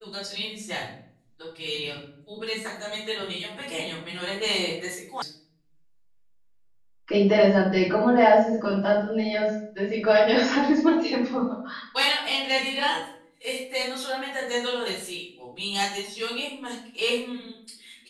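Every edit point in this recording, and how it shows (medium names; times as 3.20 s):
5.22 s: sound stops dead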